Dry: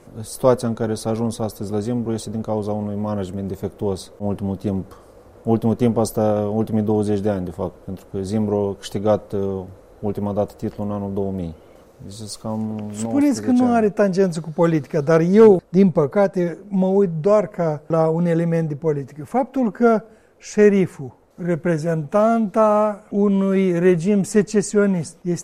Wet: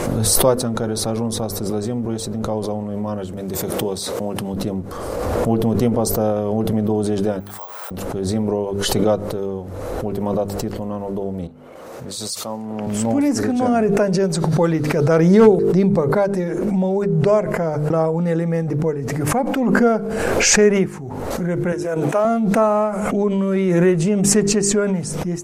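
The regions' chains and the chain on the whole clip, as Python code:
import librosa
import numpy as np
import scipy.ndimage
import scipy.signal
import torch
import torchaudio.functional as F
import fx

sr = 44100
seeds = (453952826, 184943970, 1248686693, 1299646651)

y = fx.chain(x, sr, fx.highpass(hz=110.0, slope=12),
    fx.high_shelf(hz=2500.0, db=7.5),
    fx.pre_swell(db_per_s=25.0), at=(3.37, 4.54))
y = fx.chain(y, sr, fx.highpass(hz=900.0, slope=24),
    fx.resample_bad(factor=2, down='none', up='zero_stuff'), at=(7.4, 7.91))
y = fx.chain(y, sr, fx.highpass(hz=470.0, slope=6),
    fx.band_widen(depth_pct=70), at=(11.47, 12.87))
y = fx.chain(y, sr, fx.highpass(hz=350.0, slope=12),
    fx.transient(attack_db=0, sustain_db=-11), at=(21.72, 22.25))
y = fx.hum_notches(y, sr, base_hz=50, count=9)
y = fx.pre_swell(y, sr, db_per_s=24.0)
y = F.gain(torch.from_numpy(y), -1.0).numpy()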